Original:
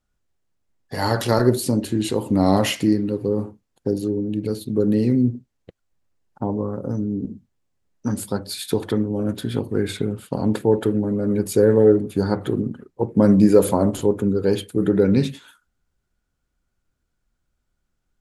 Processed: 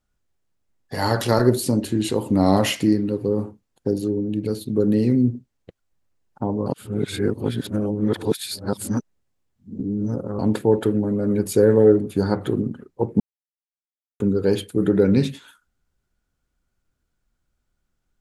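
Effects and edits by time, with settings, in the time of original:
6.66–10.39 reverse
13.2–14.2 mute

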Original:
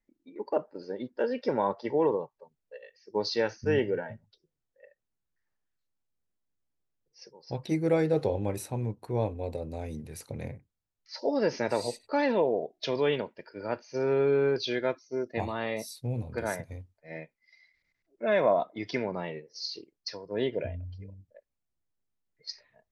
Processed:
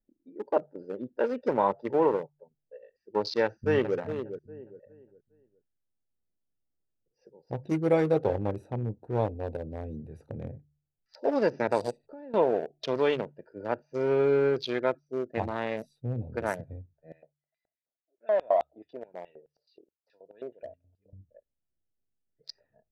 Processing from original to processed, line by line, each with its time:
3.43–3.97 echo throw 0.41 s, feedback 30%, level -8 dB
11.91–12.34 compressor 2.5:1, threshold -47 dBFS
17.12–21.13 LFO band-pass square 4.7 Hz 680–3300 Hz
whole clip: Wiener smoothing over 41 samples; bell 1000 Hz +5 dB 1.9 oct; de-hum 73.01 Hz, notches 2

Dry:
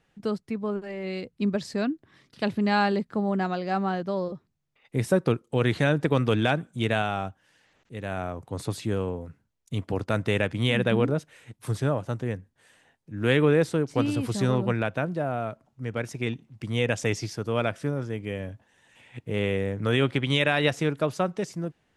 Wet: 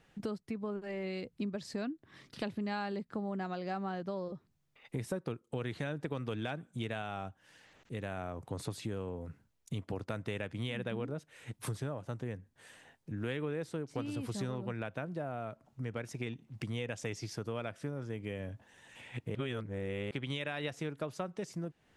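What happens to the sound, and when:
19.35–20.11 reverse
whole clip: compressor 4:1, threshold -40 dBFS; gain +2.5 dB

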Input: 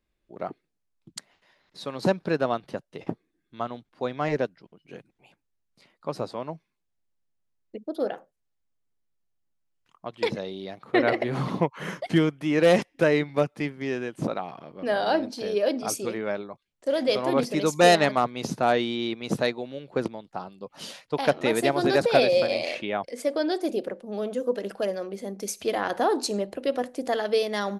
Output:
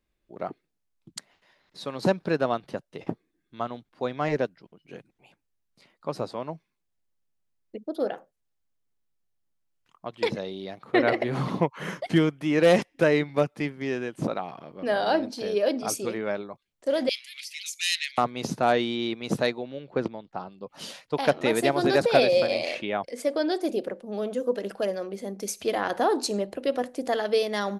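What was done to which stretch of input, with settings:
17.09–18.18 steep high-pass 2100 Hz 48 dB/oct
19.58–20.69 air absorption 100 m

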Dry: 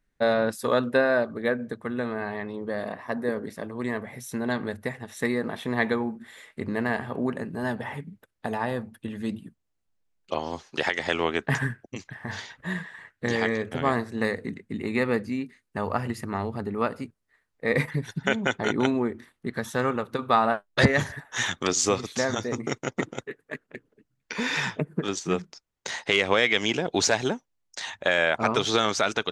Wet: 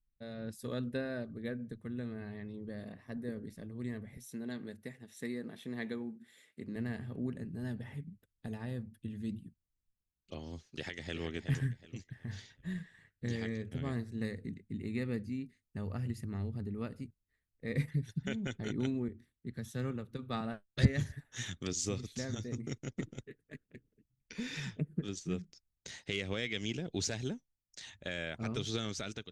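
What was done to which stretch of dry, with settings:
4.17–6.76 HPF 220 Hz
10.63–11.23 echo throw 0.37 s, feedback 30%, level -8.5 dB
19.08–20.41 three-band expander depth 40%
whole clip: passive tone stack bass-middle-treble 10-0-1; notch 1000 Hz, Q 26; AGC gain up to 9 dB

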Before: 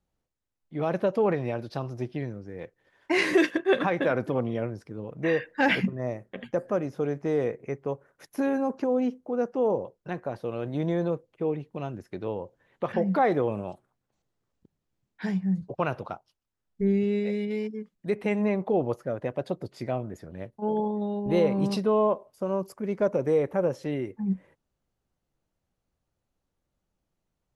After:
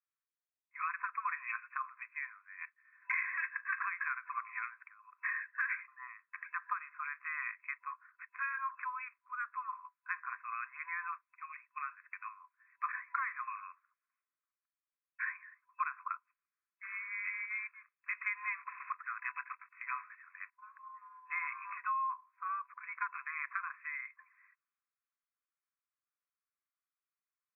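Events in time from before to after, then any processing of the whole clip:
4.94–6.45 high shelf 2000 Hz -11.5 dB
16.83–20.51 block floating point 5-bit
whole clip: FFT band-pass 1000–2600 Hz; compressor 16:1, threshold -42 dBFS; three-band expander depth 40%; gain +8.5 dB

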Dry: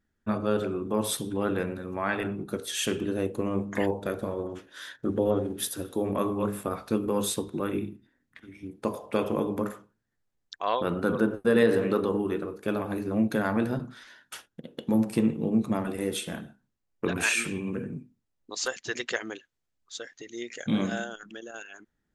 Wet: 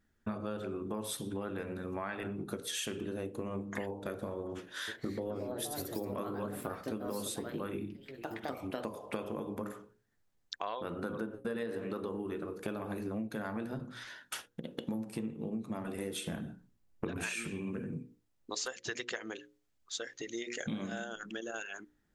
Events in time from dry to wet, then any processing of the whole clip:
4.55–9.27 echoes that change speed 0.328 s, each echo +3 st, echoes 2, each echo -6 dB
16.24–17.48 low shelf 360 Hz +8 dB
whole clip: notches 60/120/180/240/300/360/420/480/540 Hz; compressor 8:1, threshold -38 dBFS; gain +3 dB

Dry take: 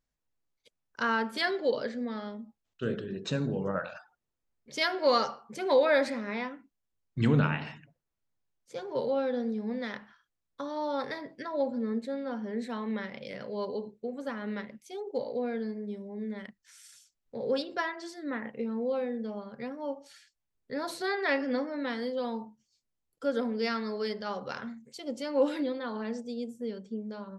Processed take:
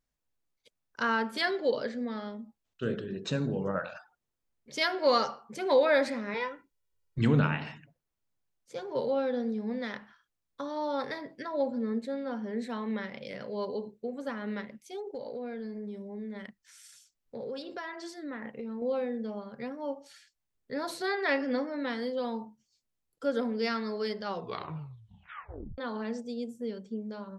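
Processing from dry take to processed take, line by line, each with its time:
6.34–7.19 comb 2.1 ms, depth 77%
15–18.82 compressor 5:1, threshold -35 dBFS
24.25 tape stop 1.53 s

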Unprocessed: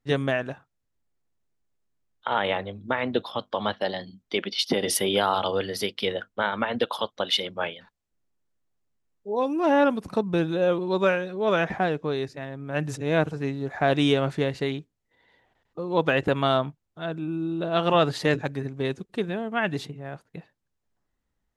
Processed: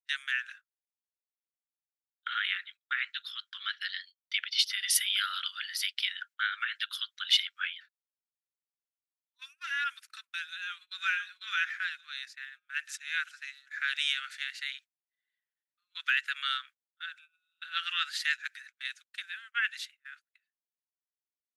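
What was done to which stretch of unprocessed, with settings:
10.48–11.02 echo throw 0.49 s, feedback 45%, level -6 dB
whole clip: steep high-pass 1400 Hz 72 dB/oct; gate -50 dBFS, range -24 dB

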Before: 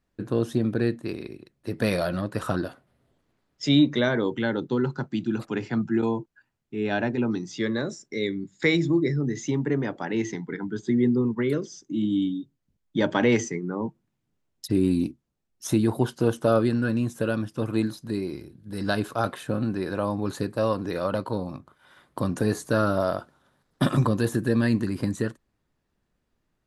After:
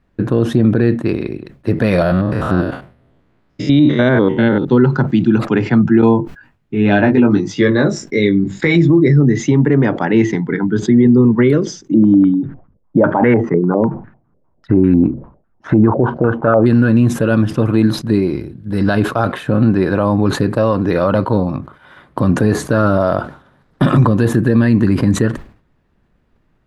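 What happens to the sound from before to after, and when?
2.02–4.65 stepped spectrum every 0.1 s
6.17–8.76 doubler 20 ms -5 dB
11.94–16.66 stepped low-pass 10 Hz 540–1600 Hz
whole clip: tone controls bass +3 dB, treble -14 dB; maximiser +15.5 dB; sustainer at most 130 dB/s; gain -2 dB

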